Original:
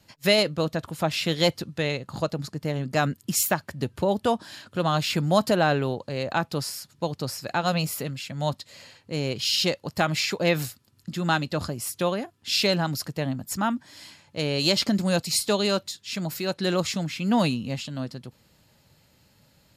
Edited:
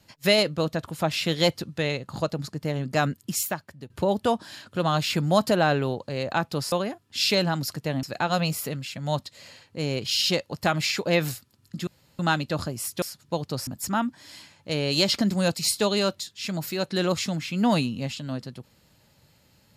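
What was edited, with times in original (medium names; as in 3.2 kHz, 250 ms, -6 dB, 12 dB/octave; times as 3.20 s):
3.04–3.90 s: fade out, to -16 dB
6.72–7.37 s: swap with 12.04–13.35 s
11.21 s: insert room tone 0.32 s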